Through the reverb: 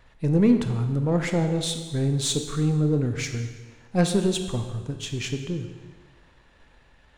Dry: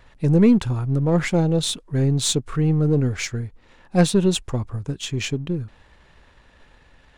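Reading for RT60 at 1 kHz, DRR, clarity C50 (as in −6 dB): 1.4 s, 6.0 dB, 7.5 dB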